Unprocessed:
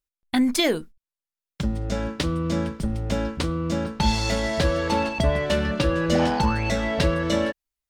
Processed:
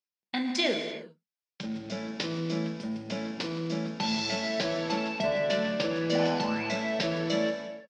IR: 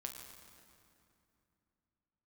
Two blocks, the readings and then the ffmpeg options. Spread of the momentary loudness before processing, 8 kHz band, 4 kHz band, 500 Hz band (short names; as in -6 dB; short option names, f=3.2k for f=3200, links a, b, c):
7 LU, -8.0 dB, -3.0 dB, -5.0 dB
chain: -filter_complex "[0:a]highpass=f=180:w=0.5412,highpass=f=180:w=1.3066,equalizer=f=290:t=q:w=4:g=-7,equalizer=f=1.2k:t=q:w=4:g=-5,equalizer=f=2.5k:t=q:w=4:g=4,equalizer=f=5.2k:t=q:w=4:g=7,lowpass=f=5.9k:w=0.5412,lowpass=f=5.9k:w=1.3066[a];[1:a]atrim=start_sample=2205,afade=t=out:st=0.4:d=0.01,atrim=end_sample=18081[b];[a][b]afir=irnorm=-1:irlink=0,volume=-2dB"